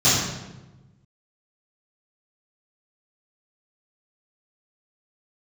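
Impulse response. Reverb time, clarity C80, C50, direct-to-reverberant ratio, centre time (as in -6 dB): 1.1 s, 2.5 dB, 0.0 dB, -15.5 dB, 75 ms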